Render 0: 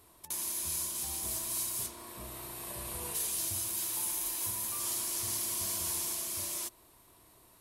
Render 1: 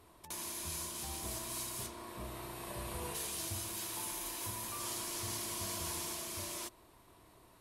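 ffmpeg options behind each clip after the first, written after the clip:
ffmpeg -i in.wav -af "lowpass=frequency=3100:poles=1,volume=2dB" out.wav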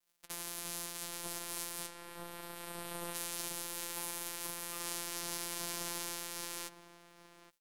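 ffmpeg -i in.wav -filter_complex "[0:a]afftfilt=real='hypot(re,im)*cos(PI*b)':imag='0':win_size=1024:overlap=0.75,aeval=exprs='sgn(val(0))*max(abs(val(0))-0.00316,0)':channel_layout=same,asplit=2[link_01][link_02];[link_02]adelay=816.3,volume=-11dB,highshelf=frequency=4000:gain=-18.4[link_03];[link_01][link_03]amix=inputs=2:normalize=0,volume=4.5dB" out.wav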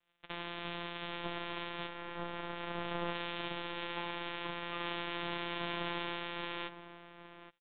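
ffmpeg -i in.wav -af "aresample=8000,aresample=44100,volume=6.5dB" out.wav

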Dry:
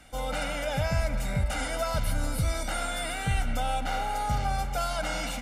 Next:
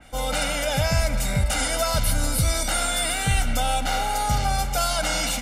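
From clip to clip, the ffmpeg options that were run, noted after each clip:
ffmpeg -i in.wav -af "adynamicequalizer=threshold=0.00316:dfrequency=3100:dqfactor=0.7:tfrequency=3100:tqfactor=0.7:attack=5:release=100:ratio=0.375:range=4:mode=boostabove:tftype=highshelf,volume=5dB" out.wav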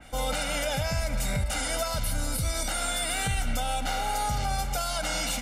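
ffmpeg -i in.wav -af "alimiter=limit=-19dB:level=0:latency=1:release=258" out.wav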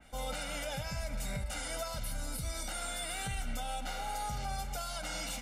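ffmpeg -i in.wav -af "flanger=delay=4.6:depth=1.6:regen=-65:speed=0.85:shape=triangular,volume=-5dB" out.wav

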